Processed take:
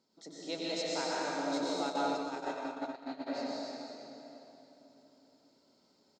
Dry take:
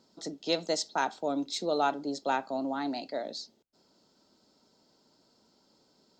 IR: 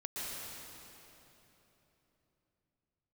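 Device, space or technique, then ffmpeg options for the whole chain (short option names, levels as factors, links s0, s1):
PA in a hall: -filter_complex "[0:a]highpass=f=100:p=1,equalizer=f=2200:t=o:w=0.24:g=5.5,aecho=1:1:94:0.447[s0];[1:a]atrim=start_sample=2205[s1];[s0][s1]afir=irnorm=-1:irlink=0,asplit=3[s2][s3][s4];[s2]afade=t=out:st=1.82:d=0.02[s5];[s3]agate=range=0.141:threshold=0.0447:ratio=16:detection=peak,afade=t=in:st=1.82:d=0.02,afade=t=out:st=3.26:d=0.02[s6];[s4]afade=t=in:st=3.26:d=0.02[s7];[s5][s6][s7]amix=inputs=3:normalize=0,volume=0.501"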